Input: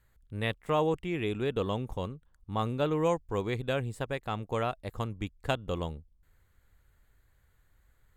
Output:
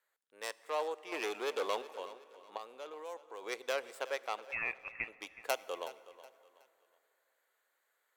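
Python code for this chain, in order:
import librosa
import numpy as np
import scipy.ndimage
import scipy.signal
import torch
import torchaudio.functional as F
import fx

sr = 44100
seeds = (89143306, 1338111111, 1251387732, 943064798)

y = fx.tracing_dist(x, sr, depth_ms=0.22)
y = fx.vibrato(y, sr, rate_hz=4.9, depth_cents=6.1)
y = fx.leveller(y, sr, passes=3, at=(1.12, 1.82))
y = fx.level_steps(y, sr, step_db=20, at=(2.56, 3.42), fade=0.02)
y = scipy.signal.sosfilt(scipy.signal.butter(4, 470.0, 'highpass', fs=sr, output='sos'), y)
y = fx.freq_invert(y, sr, carrier_hz=3100, at=(4.51, 5.08))
y = fx.rider(y, sr, range_db=3, speed_s=0.5)
y = fx.echo_feedback(y, sr, ms=370, feedback_pct=35, wet_db=-16.5)
y = fx.rev_plate(y, sr, seeds[0], rt60_s=3.0, hf_ratio=0.65, predelay_ms=0, drr_db=18.0)
y = y * librosa.db_to_amplitude(-4.0)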